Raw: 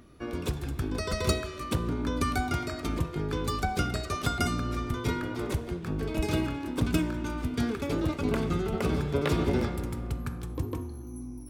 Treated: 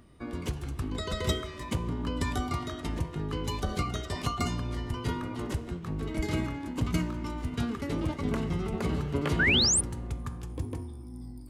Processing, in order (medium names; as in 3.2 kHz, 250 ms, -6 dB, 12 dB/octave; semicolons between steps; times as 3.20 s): formant shift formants -3 st; painted sound rise, 9.39–9.81 s, 1.4–10 kHz -22 dBFS; trim -2 dB